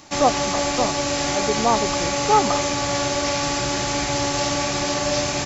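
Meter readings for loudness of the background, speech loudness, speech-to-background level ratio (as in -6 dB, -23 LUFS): -22.0 LUFS, -24.0 LUFS, -2.0 dB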